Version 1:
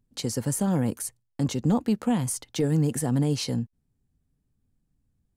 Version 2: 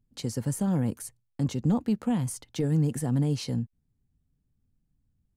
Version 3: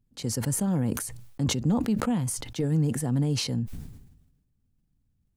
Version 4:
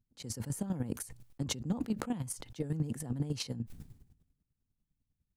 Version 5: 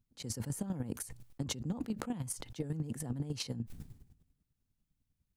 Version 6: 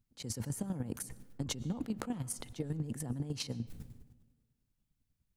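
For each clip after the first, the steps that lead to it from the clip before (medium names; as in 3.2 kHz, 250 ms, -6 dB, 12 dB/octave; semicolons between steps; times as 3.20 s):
tone controls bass +5 dB, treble -2 dB; trim -5 dB
decay stretcher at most 53 dB/s
square tremolo 10 Hz, depth 65%, duty 25%; trim -5.5 dB
compression, threshold -34 dBFS, peak gain reduction 7.5 dB; trim +1.5 dB
algorithmic reverb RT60 1.5 s, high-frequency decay 0.5×, pre-delay 75 ms, DRR 19 dB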